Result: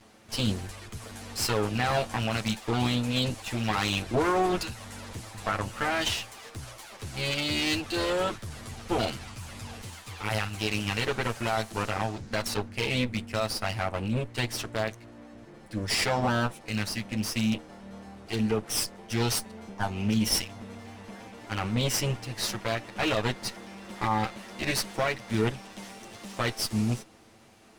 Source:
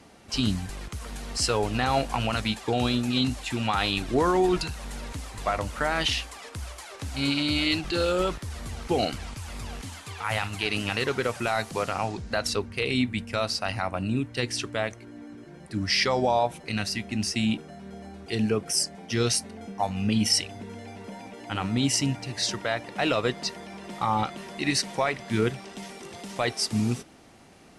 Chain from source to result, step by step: comb filter that takes the minimum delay 9.1 ms; trim -1.5 dB

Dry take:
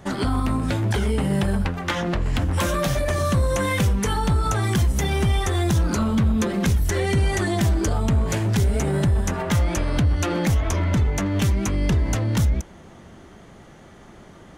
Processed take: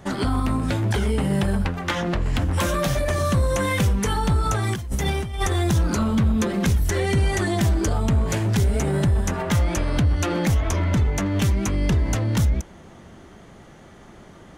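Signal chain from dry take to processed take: 4.51–5.53 s: compressor with a negative ratio -23 dBFS, ratio -0.5

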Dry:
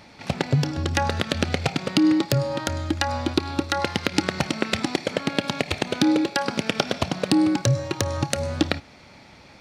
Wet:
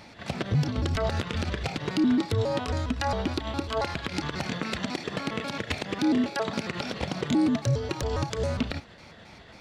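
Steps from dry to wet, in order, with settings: pitch shift switched off and on -4 st, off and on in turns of 136 ms; peak limiter -16.5 dBFS, peak gain reduction 11.5 dB

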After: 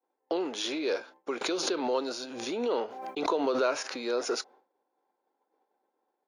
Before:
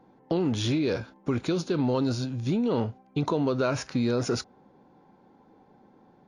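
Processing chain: high-pass 380 Hz 24 dB/octave; expander -49 dBFS; 1.41–4.02 s: swell ahead of each attack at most 44 dB/s

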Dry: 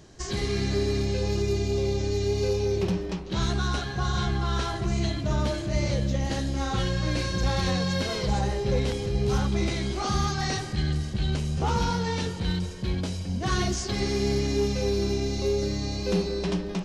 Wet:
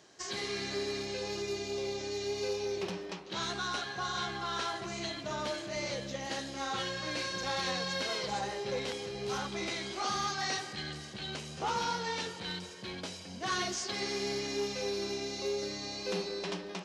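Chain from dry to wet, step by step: frequency weighting A; trim -3.5 dB

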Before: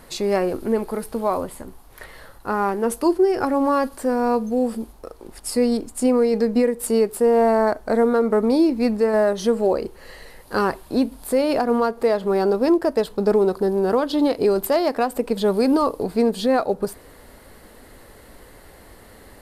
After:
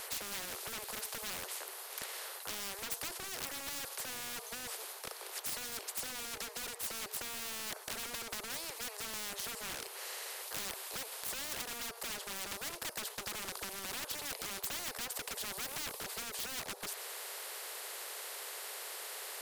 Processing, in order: steep high-pass 400 Hz 96 dB/octave; in parallel at +0.5 dB: compression, threshold -29 dBFS, peak gain reduction 14 dB; on the sum: wavefolder -22 dBFS; spectrum-flattening compressor 4:1; trim +1.5 dB

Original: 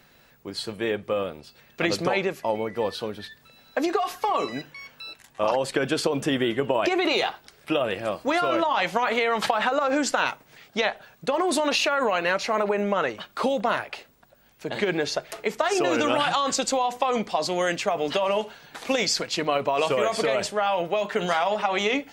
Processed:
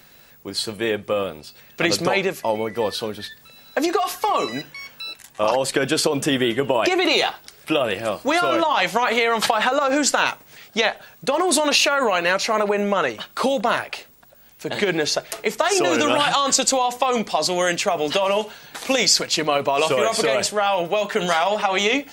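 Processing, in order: treble shelf 4.7 kHz +9 dB; trim +3.5 dB

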